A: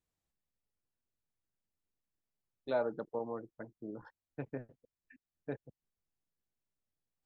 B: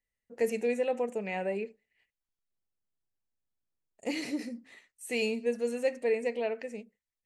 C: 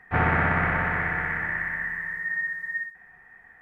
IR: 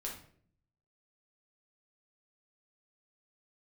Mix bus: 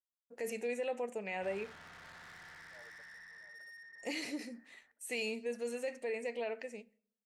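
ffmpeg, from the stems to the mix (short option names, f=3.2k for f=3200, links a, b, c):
-filter_complex "[0:a]highpass=590,tremolo=f=1.7:d=0.94,volume=-16.5dB,asplit=2[a][b];[b]volume=-10.5dB[c];[1:a]agate=range=-33dB:threshold=-54dB:ratio=3:detection=peak,alimiter=limit=-24dB:level=0:latency=1:release=20,volume=-2.5dB,asplit=2[d][e];[e]volume=-18dB[f];[2:a]lowpass=3k,alimiter=limit=-17dB:level=0:latency=1,asoftclip=type=tanh:threshold=-34dB,adelay=1300,volume=-17dB,asplit=2[g][h];[h]volume=-17dB[i];[3:a]atrim=start_sample=2205[j];[f][i]amix=inputs=2:normalize=0[k];[k][j]afir=irnorm=-1:irlink=0[l];[c]aecho=0:1:683|1366|2049|2732|3415:1|0.37|0.137|0.0507|0.0187[m];[a][d][g][l][m]amix=inputs=5:normalize=0,lowshelf=f=400:g=-8.5"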